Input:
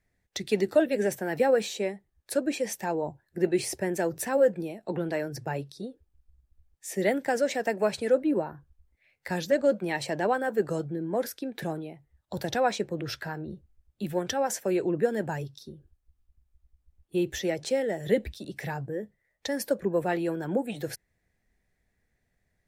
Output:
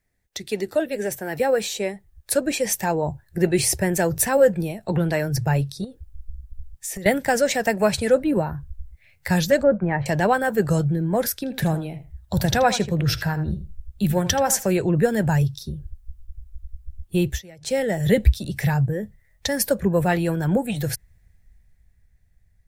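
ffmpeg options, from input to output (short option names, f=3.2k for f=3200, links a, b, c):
-filter_complex "[0:a]asettb=1/sr,asplit=3[a][b][c];[a]atrim=end=5.844[d];[b]atrim=start=5.84:end=7.06,asetpts=PTS-STARTPTS,afade=t=in:d=0.004:c=qsin,afade=t=out:st=1.216:d=0.004:c=qsin,acompressor=threshold=-39dB:ratio=6:attack=3.2:release=140:knee=1:detection=peak[e];[c]atrim=start=7.056[f];[d][e]acrossfade=d=0.004:c1=hsin:c2=qsin[g];[g][f]acrossfade=d=0.004:c1=qsin:c2=hsin,asettb=1/sr,asplit=3[h][i][j];[h]atrim=end=9.634[k];[i]atrim=start=9.63:end=10.06,asetpts=PTS-STARTPTS,afade=t=in:d=0.004:c=qsin,afade=t=out:st=0.426:d=0.004:c=qsin,lowpass=f=1.7k:w=0.5412,lowpass=f=1.7k:w=1.3066[l];[j]atrim=start=10.056[m];[k][l]acrossfade=d=0.004:c1=hsin:c2=qsin[n];[n][m]acrossfade=d=0.004:c1=qsin:c2=hsin,asettb=1/sr,asplit=3[o][p][q];[o]atrim=end=11.324[r];[p]atrim=start=11.32:end=14.73,asetpts=PTS-STARTPTS,afade=t=in:d=0.004:c=qsin,afade=t=out:st=3.406:d=0.004:c=qsin,asplit=2[s][t];[t]adelay=80,lowpass=f=4.3k:p=1,volume=-13dB,asplit=2[u][v];[v]adelay=80,lowpass=f=4.3k:p=1,volume=0.17[w];[s][u][w]amix=inputs=3:normalize=0,atrim=end_sample=150381[x];[q]atrim=start=14.726[y];[r][x]acrossfade=d=0.004:c1=hsin:c2=qsin[z];[z][y]acrossfade=d=0.004:c1=qsin:c2=hsin,asplit=3[aa][ab][ac];[aa]atrim=end=17.42,asetpts=PTS-STARTPTS,afade=t=out:st=17.18:d=0.24:c=qsin:silence=0.0794328[ad];[ab]atrim=start=17.42:end=17.6,asetpts=PTS-STARTPTS,volume=-22dB[ae];[ac]atrim=start=17.6,asetpts=PTS-STARTPTS,afade=t=in:d=0.24:c=qsin:silence=0.0794328[af];[ad][ae][af]concat=n=3:v=0:a=1,asubboost=boost=10:cutoff=100,dynaudnorm=f=160:g=21:m=8.5dB,highshelf=f=7.2k:g=8"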